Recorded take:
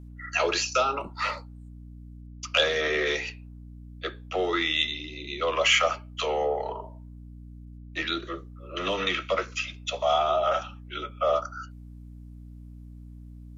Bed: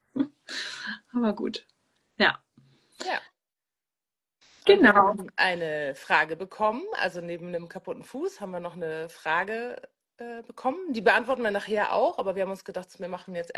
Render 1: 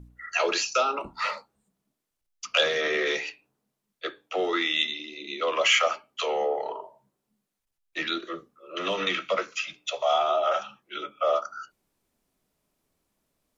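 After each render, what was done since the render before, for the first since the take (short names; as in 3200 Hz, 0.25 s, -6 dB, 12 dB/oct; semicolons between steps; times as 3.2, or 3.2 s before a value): de-hum 60 Hz, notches 5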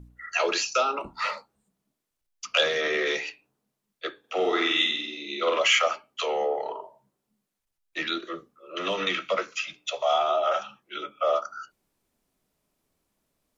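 4.19–5.59 flutter echo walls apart 8.2 m, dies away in 0.73 s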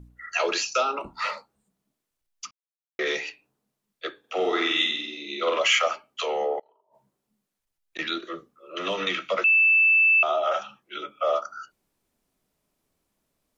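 2.51–2.99 mute; 6.59–7.99 flipped gate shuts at -27 dBFS, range -30 dB; 9.44–10.23 bleep 2640 Hz -15 dBFS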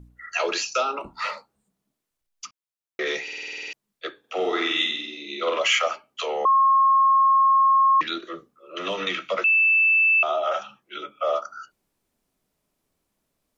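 3.23 stutter in place 0.05 s, 10 plays; 6.45–8.01 bleep 1080 Hz -14 dBFS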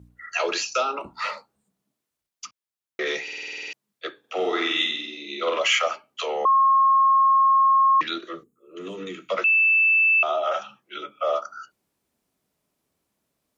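8.44–9.29 spectral gain 480–6400 Hz -14 dB; HPF 68 Hz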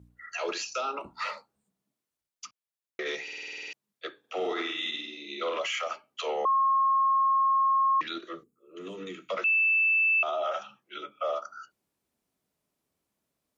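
limiter -20.5 dBFS, peak gain reduction 10.5 dB; upward expander 1.5:1, over -34 dBFS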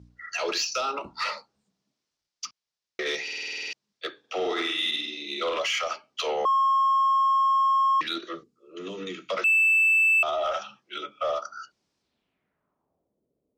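low-pass sweep 5300 Hz -> 450 Hz, 11.99–13.2; in parallel at -5 dB: soft clip -29.5 dBFS, distortion -9 dB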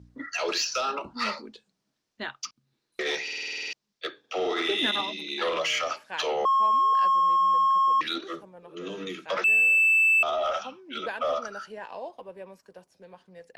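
add bed -14 dB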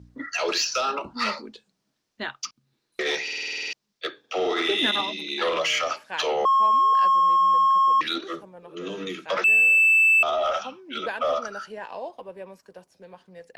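gain +3 dB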